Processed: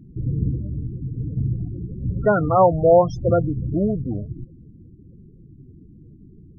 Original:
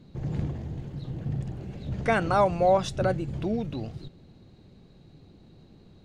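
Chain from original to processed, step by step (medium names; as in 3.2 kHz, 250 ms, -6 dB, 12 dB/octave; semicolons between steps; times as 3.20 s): high-order bell 3.3 kHz -9.5 dB 1.3 oct; loudest bins only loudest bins 16; speed mistake 48 kHz file played as 44.1 kHz; trim +7.5 dB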